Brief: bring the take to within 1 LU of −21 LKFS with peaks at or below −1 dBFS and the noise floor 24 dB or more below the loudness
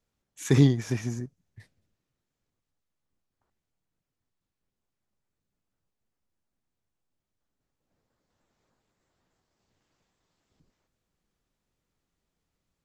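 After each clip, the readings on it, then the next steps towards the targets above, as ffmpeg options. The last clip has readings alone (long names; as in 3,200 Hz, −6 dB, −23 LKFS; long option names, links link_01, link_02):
integrated loudness −24.5 LKFS; sample peak −8.0 dBFS; target loudness −21.0 LKFS
→ -af "volume=3.5dB"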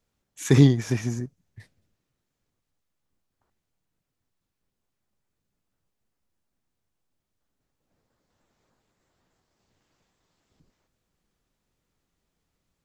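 integrated loudness −21.0 LKFS; sample peak −4.5 dBFS; background noise floor −82 dBFS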